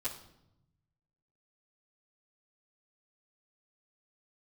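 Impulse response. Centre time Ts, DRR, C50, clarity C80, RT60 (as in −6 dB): 21 ms, −10.5 dB, 9.0 dB, 12.5 dB, 0.80 s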